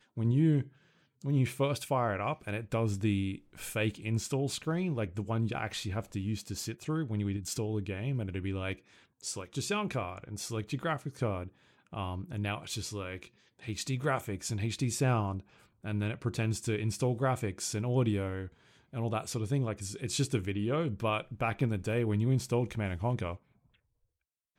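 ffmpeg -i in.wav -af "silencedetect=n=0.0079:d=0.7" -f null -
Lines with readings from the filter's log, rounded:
silence_start: 23.36
silence_end: 24.58 | silence_duration: 1.22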